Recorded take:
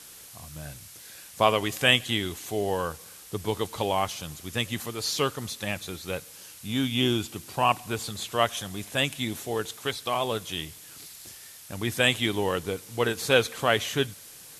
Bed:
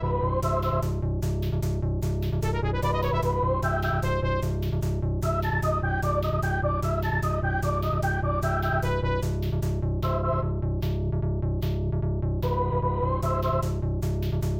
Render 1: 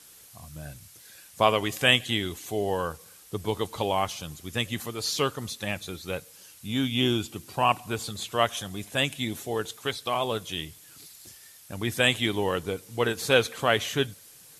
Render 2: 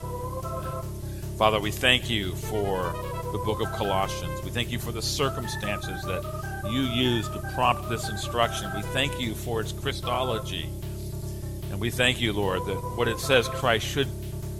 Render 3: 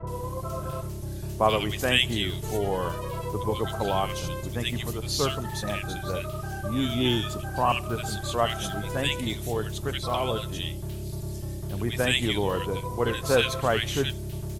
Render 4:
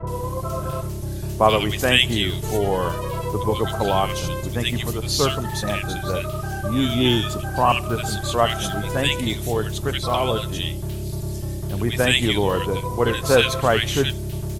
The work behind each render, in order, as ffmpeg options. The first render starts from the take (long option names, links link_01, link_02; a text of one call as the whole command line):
ffmpeg -i in.wav -af "afftdn=noise_reduction=6:noise_floor=-47" out.wav
ffmpeg -i in.wav -i bed.wav -filter_complex "[1:a]volume=-7.5dB[link_01];[0:a][link_01]amix=inputs=2:normalize=0" out.wav
ffmpeg -i in.wav -filter_complex "[0:a]acrossover=split=1700[link_01][link_02];[link_02]adelay=70[link_03];[link_01][link_03]amix=inputs=2:normalize=0" out.wav
ffmpeg -i in.wav -af "volume=6dB,alimiter=limit=-1dB:level=0:latency=1" out.wav